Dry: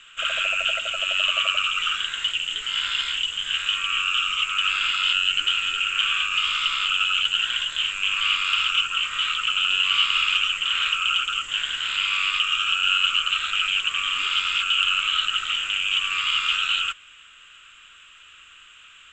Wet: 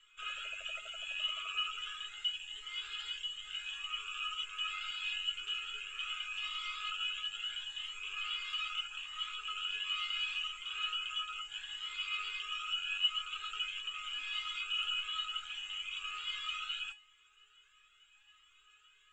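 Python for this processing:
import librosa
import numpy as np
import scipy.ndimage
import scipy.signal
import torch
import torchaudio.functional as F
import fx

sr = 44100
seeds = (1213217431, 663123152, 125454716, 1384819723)

y = fx.comb_fb(x, sr, f0_hz=420.0, decay_s=0.23, harmonics='all', damping=0.0, mix_pct=90)
y = fx.comb_cascade(y, sr, direction='rising', hz=0.76)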